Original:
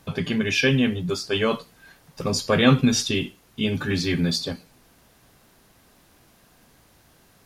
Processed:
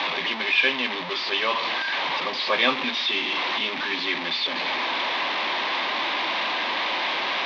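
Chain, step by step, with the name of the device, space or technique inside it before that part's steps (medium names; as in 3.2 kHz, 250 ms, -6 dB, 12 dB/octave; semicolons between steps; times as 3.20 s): digital answering machine (band-pass 320–3100 Hz; one-bit delta coder 32 kbps, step -21 dBFS; cabinet simulation 440–4000 Hz, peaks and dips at 450 Hz -10 dB, 700 Hz -4 dB, 1 kHz +5 dB, 1.4 kHz -8 dB, 2.2 kHz +4 dB, 3.6 kHz +5 dB); trim +2.5 dB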